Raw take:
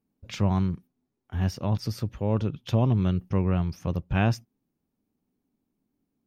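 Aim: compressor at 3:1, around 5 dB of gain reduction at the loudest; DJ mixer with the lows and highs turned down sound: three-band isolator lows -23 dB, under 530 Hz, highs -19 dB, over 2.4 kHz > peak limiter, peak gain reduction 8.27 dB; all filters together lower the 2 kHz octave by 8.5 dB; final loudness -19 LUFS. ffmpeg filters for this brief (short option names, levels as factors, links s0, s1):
-filter_complex "[0:a]equalizer=f=2000:t=o:g=-9,acompressor=threshold=0.0562:ratio=3,acrossover=split=530 2400:gain=0.0708 1 0.112[s0][s1][s2];[s0][s1][s2]amix=inputs=3:normalize=0,volume=29.9,alimiter=limit=0.596:level=0:latency=1"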